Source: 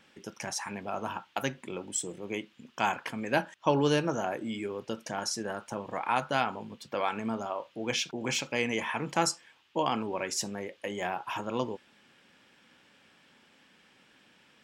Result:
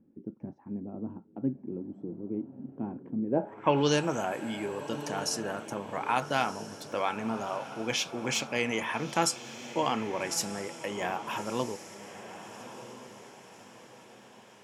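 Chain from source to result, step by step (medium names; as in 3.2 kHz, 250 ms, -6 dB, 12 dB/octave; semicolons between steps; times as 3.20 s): echo that smears into a reverb 1276 ms, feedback 44%, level -12 dB; low-pass sweep 280 Hz -> 13 kHz, 3.26–4.07 s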